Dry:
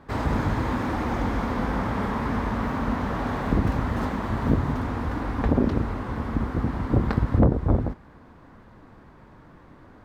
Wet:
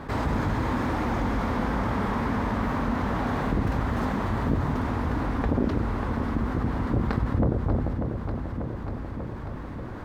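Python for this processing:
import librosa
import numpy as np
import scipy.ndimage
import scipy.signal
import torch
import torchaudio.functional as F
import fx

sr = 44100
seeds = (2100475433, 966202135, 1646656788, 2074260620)

p1 = x + fx.echo_feedback(x, sr, ms=591, feedback_pct=55, wet_db=-12.0, dry=0)
p2 = fx.env_flatten(p1, sr, amount_pct=50)
y = F.gain(torch.from_numpy(p2), -6.0).numpy()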